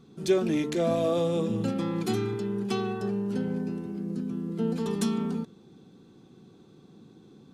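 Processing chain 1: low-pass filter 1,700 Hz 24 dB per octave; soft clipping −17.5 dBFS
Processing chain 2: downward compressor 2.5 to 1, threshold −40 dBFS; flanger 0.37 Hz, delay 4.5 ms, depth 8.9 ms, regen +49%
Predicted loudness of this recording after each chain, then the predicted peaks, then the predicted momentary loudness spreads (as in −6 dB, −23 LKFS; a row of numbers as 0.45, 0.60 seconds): −30.0, −43.0 LKFS; −18.0, −29.5 dBFS; 7, 17 LU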